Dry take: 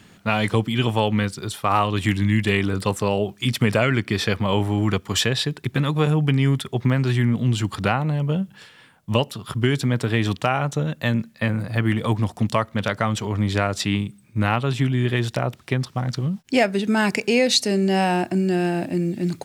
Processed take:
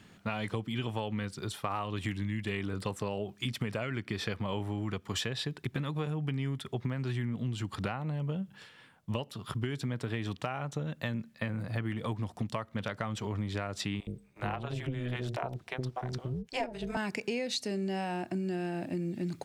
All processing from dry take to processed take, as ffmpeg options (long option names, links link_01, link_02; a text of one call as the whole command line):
ffmpeg -i in.wav -filter_complex "[0:a]asettb=1/sr,asplit=3[link_01][link_02][link_03];[link_01]atrim=end=14.004[link_04];[link_02]atrim=start=14:end=16.97,asetpts=PTS-STARTPTS,afade=type=in:duration=0.004:curve=qsin,afade=type=out:start_time=2.966:duration=0.004:curve=qsin,equalizer=frequency=710:width=3.5:gain=9,acrossover=split=430[link_05][link_06];[link_05]adelay=70[link_07];[link_07][link_06]amix=inputs=2:normalize=0,atrim=end_sample=130977,tremolo=f=250:d=0.75[link_08];[link_03]atrim=start=16.966[link_09];[link_04][link_08]acrossfade=duration=0.004:curve1=hsin:curve2=qsin[link_10];[link_10][link_09]acrossfade=duration=0.004:curve1=qsin:curve2=hsin,highshelf=frequency=6500:gain=-5,acompressor=threshold=-24dB:ratio=6,volume=-6.5dB" out.wav